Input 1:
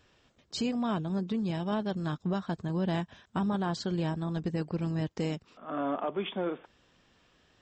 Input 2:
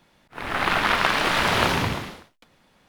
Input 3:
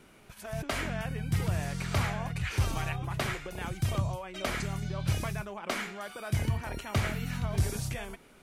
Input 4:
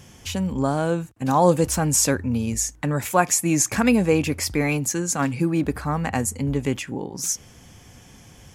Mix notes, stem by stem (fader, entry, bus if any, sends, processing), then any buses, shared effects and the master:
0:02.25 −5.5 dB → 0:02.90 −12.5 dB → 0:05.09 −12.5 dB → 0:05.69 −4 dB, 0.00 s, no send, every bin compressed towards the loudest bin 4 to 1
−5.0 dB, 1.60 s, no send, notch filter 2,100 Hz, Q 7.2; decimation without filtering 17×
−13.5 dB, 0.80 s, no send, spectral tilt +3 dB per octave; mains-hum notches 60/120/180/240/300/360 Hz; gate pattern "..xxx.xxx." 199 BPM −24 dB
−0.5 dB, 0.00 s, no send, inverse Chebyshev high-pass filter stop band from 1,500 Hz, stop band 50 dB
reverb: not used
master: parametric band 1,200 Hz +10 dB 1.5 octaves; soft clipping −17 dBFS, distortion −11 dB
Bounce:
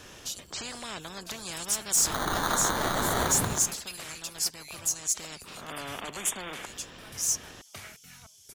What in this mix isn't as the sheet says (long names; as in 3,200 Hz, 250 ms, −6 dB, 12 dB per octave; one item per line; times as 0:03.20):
stem 1 −5.5 dB → +5.5 dB
master: missing parametric band 1,200 Hz +10 dB 1.5 octaves